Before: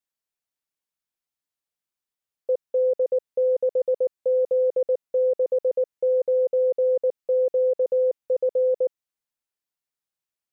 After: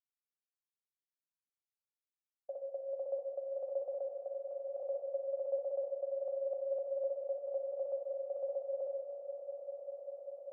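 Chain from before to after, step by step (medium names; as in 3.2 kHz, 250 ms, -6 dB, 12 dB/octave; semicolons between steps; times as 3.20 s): expander on every frequency bin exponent 1.5; expander -43 dBFS; level-controlled noise filter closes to 500 Hz, open at -18 dBFS; peak limiter -27.5 dBFS, peak gain reduction 10.5 dB; 3.97–4.80 s: compression, threshold -38 dBFS, peak gain reduction 8 dB; vowel filter a; frequency shift +31 Hz; echo with a slow build-up 198 ms, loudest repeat 5, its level -12.5 dB; gated-style reverb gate 490 ms falling, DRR 2 dB; trim +5.5 dB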